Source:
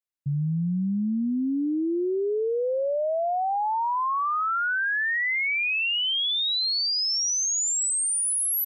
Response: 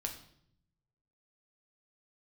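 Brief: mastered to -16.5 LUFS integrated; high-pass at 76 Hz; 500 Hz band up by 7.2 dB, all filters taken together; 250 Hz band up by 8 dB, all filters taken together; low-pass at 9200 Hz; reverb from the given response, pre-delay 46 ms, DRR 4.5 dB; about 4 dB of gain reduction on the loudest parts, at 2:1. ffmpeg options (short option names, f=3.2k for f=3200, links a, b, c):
-filter_complex "[0:a]highpass=76,lowpass=9.2k,equalizer=f=250:t=o:g=8.5,equalizer=f=500:t=o:g=6.5,acompressor=threshold=-23dB:ratio=2,asplit=2[a][b];[1:a]atrim=start_sample=2205,adelay=46[c];[b][c]afir=irnorm=-1:irlink=0,volume=-4.5dB[d];[a][d]amix=inputs=2:normalize=0,volume=5.5dB"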